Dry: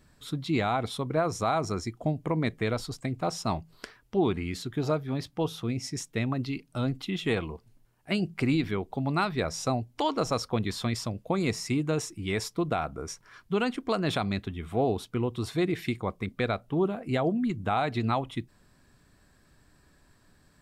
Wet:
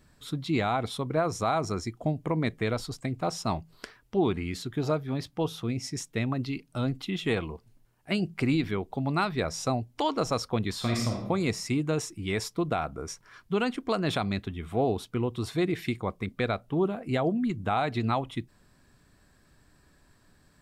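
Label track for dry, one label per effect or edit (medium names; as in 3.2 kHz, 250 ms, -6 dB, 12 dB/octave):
10.770000	11.190000	reverb throw, RT60 0.87 s, DRR 0 dB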